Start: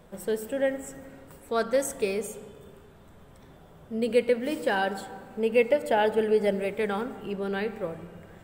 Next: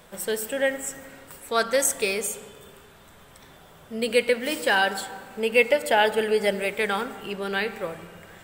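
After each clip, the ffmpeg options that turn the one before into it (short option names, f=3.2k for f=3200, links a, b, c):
-af "tiltshelf=f=890:g=-7,volume=4.5dB"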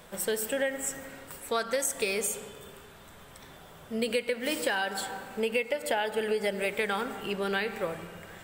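-af "acompressor=threshold=-25dB:ratio=10"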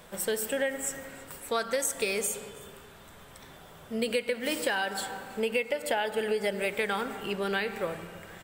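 -af "aecho=1:1:325:0.0668"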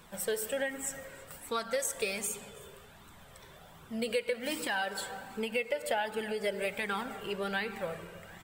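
-af "flanger=delay=0.7:depth=1.4:regen=-30:speed=1.3:shape=triangular"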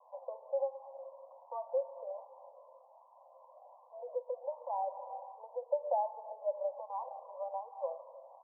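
-af "asuperpass=centerf=740:order=20:qfactor=1.3,volume=1dB"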